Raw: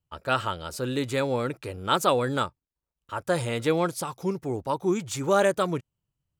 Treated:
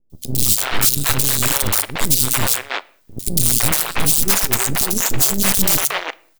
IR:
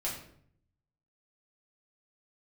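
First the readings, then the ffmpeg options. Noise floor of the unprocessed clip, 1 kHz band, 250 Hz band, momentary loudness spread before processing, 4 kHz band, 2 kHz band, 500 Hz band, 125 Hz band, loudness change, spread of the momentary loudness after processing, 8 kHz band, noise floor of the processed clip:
below −85 dBFS, +1.5 dB, +3.0 dB, 10 LU, +13.5 dB, +9.5 dB, −4.5 dB, +7.5 dB, +11.5 dB, 7 LU, +23.0 dB, −56 dBFS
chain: -filter_complex "[0:a]aemphasis=mode=production:type=riaa,aexciter=amount=9.9:drive=4:freq=3600,equalizer=frequency=320:width_type=o:width=1.6:gain=7,bandreject=frequency=470:width=12,areverse,acompressor=threshold=-17dB:ratio=10,areverse,aeval=exprs='(mod(4.73*val(0)+1,2)-1)/4.73':channel_layout=same,highpass=230,aeval=exprs='0.282*(cos(1*acos(clip(val(0)/0.282,-1,1)))-cos(1*PI/2))+0.0891*(cos(3*acos(clip(val(0)/0.282,-1,1)))-cos(3*PI/2))+0.02*(cos(4*acos(clip(val(0)/0.282,-1,1)))-cos(4*PI/2))+0.0398*(cos(6*acos(clip(val(0)/0.282,-1,1)))-cos(6*PI/2))+0.0178*(cos(8*acos(clip(val(0)/0.282,-1,1)))-cos(8*PI/2))':channel_layout=same,aeval=exprs='max(val(0),0)':channel_layout=same,acrossover=split=440|3300[link_01][link_02][link_03];[link_03]adelay=100[link_04];[link_02]adelay=330[link_05];[link_01][link_05][link_04]amix=inputs=3:normalize=0,asplit=2[link_06][link_07];[1:a]atrim=start_sample=2205,afade=type=out:start_time=0.29:duration=0.01,atrim=end_sample=13230[link_08];[link_07][link_08]afir=irnorm=-1:irlink=0,volume=-20dB[link_09];[link_06][link_09]amix=inputs=2:normalize=0,alimiter=level_in=19dB:limit=-1dB:release=50:level=0:latency=1,volume=-1dB"

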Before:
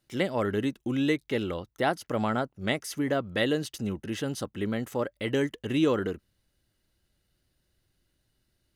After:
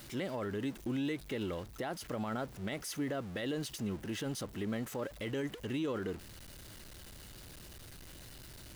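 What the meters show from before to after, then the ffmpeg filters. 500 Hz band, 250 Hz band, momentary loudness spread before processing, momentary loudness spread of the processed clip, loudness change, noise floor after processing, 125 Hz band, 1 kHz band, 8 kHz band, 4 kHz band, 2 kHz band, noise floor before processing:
−9.5 dB, −8.0 dB, 7 LU, 14 LU, −9.0 dB, −51 dBFS, −7.0 dB, −10.5 dB, −3.0 dB, −8.0 dB, −10.0 dB, −76 dBFS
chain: -af "aeval=exprs='val(0)+0.5*0.0119*sgn(val(0))':channel_layout=same,alimiter=limit=-22dB:level=0:latency=1:release=39,volume=-6.5dB"

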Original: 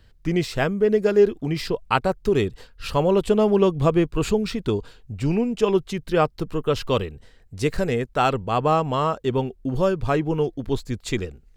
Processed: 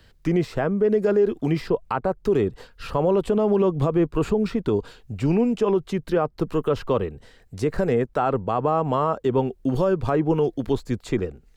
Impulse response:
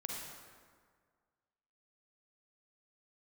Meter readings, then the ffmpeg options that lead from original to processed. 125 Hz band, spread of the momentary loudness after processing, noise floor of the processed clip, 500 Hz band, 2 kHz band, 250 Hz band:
−0.5 dB, 6 LU, −55 dBFS, −0.5 dB, −5.0 dB, +0.5 dB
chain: -filter_complex "[0:a]lowshelf=frequency=130:gain=-8,acrossover=split=200|1600[link_01][link_02][link_03];[link_03]acompressor=threshold=-48dB:ratio=5[link_04];[link_01][link_02][link_04]amix=inputs=3:normalize=0,alimiter=limit=-17dB:level=0:latency=1:release=64,volume=5dB"

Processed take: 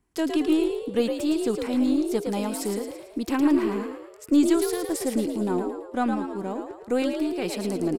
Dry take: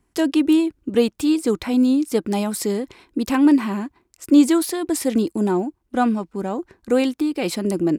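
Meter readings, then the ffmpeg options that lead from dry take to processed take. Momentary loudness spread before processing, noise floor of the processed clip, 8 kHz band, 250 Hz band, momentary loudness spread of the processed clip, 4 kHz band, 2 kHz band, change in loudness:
11 LU, −47 dBFS, −5.5 dB, −6.0 dB, 10 LU, −5.0 dB, −5.0 dB, −5.5 dB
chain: -filter_complex "[0:a]asplit=7[link_01][link_02][link_03][link_04][link_05][link_06][link_07];[link_02]adelay=111,afreqshift=55,volume=-6dB[link_08];[link_03]adelay=222,afreqshift=110,volume=-12.4dB[link_09];[link_04]adelay=333,afreqshift=165,volume=-18.8dB[link_10];[link_05]adelay=444,afreqshift=220,volume=-25.1dB[link_11];[link_06]adelay=555,afreqshift=275,volume=-31.5dB[link_12];[link_07]adelay=666,afreqshift=330,volume=-37.9dB[link_13];[link_01][link_08][link_09][link_10][link_11][link_12][link_13]amix=inputs=7:normalize=0,aeval=exprs='0.668*(cos(1*acos(clip(val(0)/0.668,-1,1)))-cos(1*PI/2))+0.0168*(cos(4*acos(clip(val(0)/0.668,-1,1)))-cos(4*PI/2))+0.00531*(cos(8*acos(clip(val(0)/0.668,-1,1)))-cos(8*PI/2))':channel_layout=same,volume=-6.5dB"

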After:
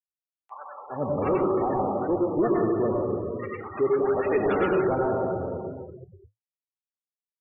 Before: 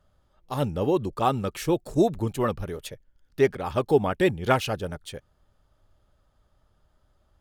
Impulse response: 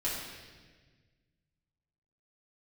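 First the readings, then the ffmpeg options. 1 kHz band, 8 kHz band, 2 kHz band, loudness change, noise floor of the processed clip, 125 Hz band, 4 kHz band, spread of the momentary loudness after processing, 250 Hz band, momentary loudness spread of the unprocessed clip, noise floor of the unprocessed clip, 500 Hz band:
0.0 dB, below −35 dB, −2.5 dB, 0.0 dB, below −85 dBFS, −4.5 dB, below −15 dB, 14 LU, +1.0 dB, 15 LU, −68 dBFS, +1.5 dB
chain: -filter_complex "[0:a]acrossover=split=270 2500:gain=0.0794 1 0.0708[link_01][link_02][link_03];[link_01][link_02][link_03]amix=inputs=3:normalize=0,acontrast=30,equalizer=frequency=86:width=0.75:gain=14,asplit=2[link_04][link_05];[1:a]atrim=start_sample=2205,asetrate=26019,aresample=44100,adelay=88[link_06];[link_05][link_06]afir=irnorm=-1:irlink=0,volume=-7.5dB[link_07];[link_04][link_07]amix=inputs=2:normalize=0,asoftclip=type=tanh:threshold=-13dB,afftfilt=real='re*gte(hypot(re,im),0.0708)':imag='im*gte(hypot(re,im),0.0708)':win_size=1024:overlap=0.75,acompressor=mode=upward:threshold=-36dB:ratio=2.5,acrossover=split=990[link_08][link_09];[link_08]adelay=400[link_10];[link_10][link_09]amix=inputs=2:normalize=0,flanger=delay=3.1:depth=8.4:regen=-78:speed=0.45:shape=sinusoidal"

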